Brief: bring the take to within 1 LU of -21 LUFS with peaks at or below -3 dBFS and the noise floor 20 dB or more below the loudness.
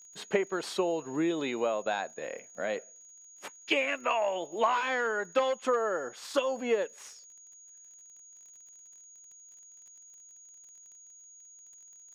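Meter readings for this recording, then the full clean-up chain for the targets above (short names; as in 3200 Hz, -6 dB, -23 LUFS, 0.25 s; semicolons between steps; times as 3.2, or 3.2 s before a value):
ticks 32/s; steady tone 6700 Hz; tone level -51 dBFS; loudness -31.0 LUFS; peak -15.0 dBFS; loudness target -21.0 LUFS
-> de-click; notch 6700 Hz, Q 30; gain +10 dB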